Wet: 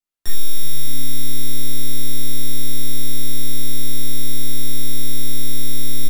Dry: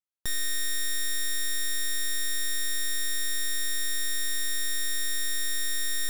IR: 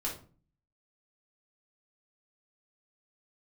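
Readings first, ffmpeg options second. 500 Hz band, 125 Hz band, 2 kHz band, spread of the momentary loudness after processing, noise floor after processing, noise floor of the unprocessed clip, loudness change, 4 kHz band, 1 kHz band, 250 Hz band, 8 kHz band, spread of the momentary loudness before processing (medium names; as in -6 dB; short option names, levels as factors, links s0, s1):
+13.0 dB, no reading, -8.0 dB, 0 LU, -7 dBFS, -26 dBFS, +2.0 dB, +1.0 dB, +3.0 dB, +18.0 dB, +0.5 dB, 0 LU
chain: -filter_complex "[0:a]acrossover=split=120|3000[s0][s1][s2];[s1]acompressor=threshold=0.00891:ratio=2.5[s3];[s0][s3][s2]amix=inputs=3:normalize=0,asplit=7[s4][s5][s6][s7][s8][s9][s10];[s5]adelay=283,afreqshift=130,volume=0.141[s11];[s6]adelay=566,afreqshift=260,volume=0.0861[s12];[s7]adelay=849,afreqshift=390,volume=0.0525[s13];[s8]adelay=1132,afreqshift=520,volume=0.032[s14];[s9]adelay=1415,afreqshift=650,volume=0.0195[s15];[s10]adelay=1698,afreqshift=780,volume=0.0119[s16];[s4][s11][s12][s13][s14][s15][s16]amix=inputs=7:normalize=0[s17];[1:a]atrim=start_sample=2205,asetrate=42336,aresample=44100[s18];[s17][s18]afir=irnorm=-1:irlink=0,volume=1.26"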